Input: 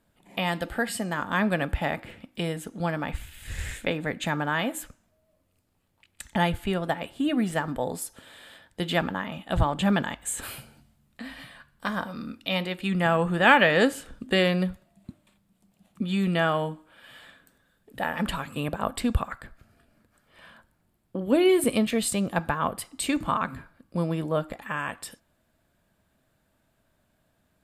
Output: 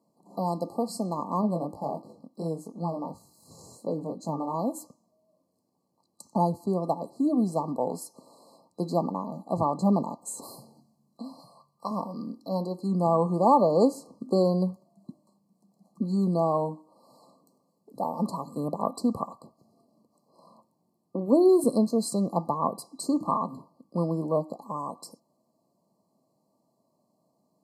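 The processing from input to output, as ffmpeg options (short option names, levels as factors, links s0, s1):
-filter_complex "[0:a]asettb=1/sr,asplit=3[s0][s1][s2];[s0]atrim=end=1.414[s3];[s1]atrim=start=1.41:end=4.54,asetpts=PTS-STARTPTS,afade=t=in:d=0.004:c=qsin,afade=t=out:st=3.126:d=0.004:c=qsin,flanger=delay=18:depth=6:speed=2.8[s4];[s2]atrim=start=4.536[s5];[s3][s4]acrossfade=d=0.004:c1=hsin:c2=qsin[s6];[s6][s5]acrossfade=d=0.004:c1=qsin:c2=hsin,asettb=1/sr,asplit=3[s7][s8][s9];[s7]atrim=end=11.394[s10];[s8]atrim=start=11.39:end=11.91,asetpts=PTS-STARTPTS,afade=t=in:d=0.004:c=qsin,afade=t=out:st=0.516:d=0.004:c=qsin,equalizer=f=260:t=o:w=0.59:g=-13[s11];[s9]atrim=start=11.906[s12];[s10][s11]acrossfade=d=0.004:c1=hsin:c2=qsin[s13];[s13][s12]acrossfade=d=0.004:c1=qsin:c2=hsin,afftfilt=real='re*(1-between(b*sr/4096,1200,4000))':imag='im*(1-between(b*sr/4096,1200,4000))':win_size=4096:overlap=0.75,highpass=f=160:w=0.5412,highpass=f=160:w=1.3066,highshelf=f=5900:g=-10,volume=1.12"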